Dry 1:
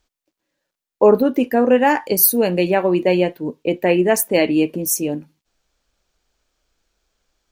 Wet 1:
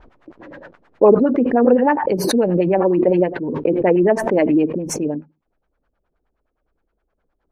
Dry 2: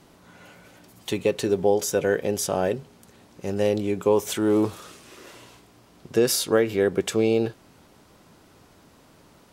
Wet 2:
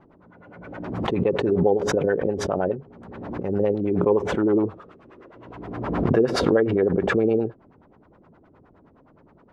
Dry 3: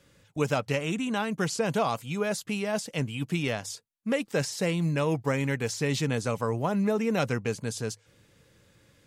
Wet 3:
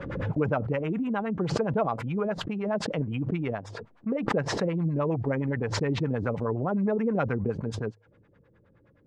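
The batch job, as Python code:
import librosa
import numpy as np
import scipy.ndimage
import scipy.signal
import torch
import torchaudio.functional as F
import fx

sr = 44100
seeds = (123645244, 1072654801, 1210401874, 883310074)

y = fx.filter_lfo_lowpass(x, sr, shape='sine', hz=9.6, low_hz=300.0, high_hz=1700.0, q=1.5)
y = fx.pre_swell(y, sr, db_per_s=38.0)
y = y * librosa.db_to_amplitude(-1.5)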